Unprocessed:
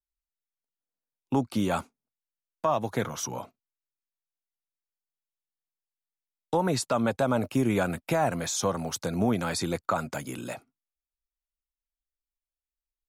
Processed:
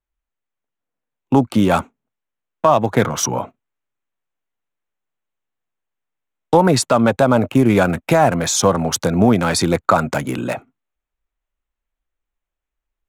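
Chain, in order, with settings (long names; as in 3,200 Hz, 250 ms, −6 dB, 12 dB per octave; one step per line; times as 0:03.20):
adaptive Wiener filter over 9 samples
in parallel at 0 dB: speech leveller within 3 dB
on the sum: level +6.5 dB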